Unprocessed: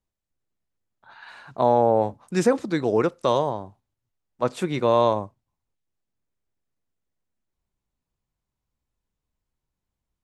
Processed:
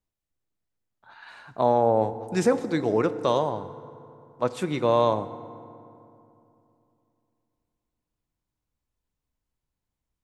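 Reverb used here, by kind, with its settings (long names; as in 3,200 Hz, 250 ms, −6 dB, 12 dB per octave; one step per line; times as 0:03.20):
feedback delay network reverb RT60 2.8 s, low-frequency decay 1.2×, high-frequency decay 0.5×, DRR 12.5 dB
level −2 dB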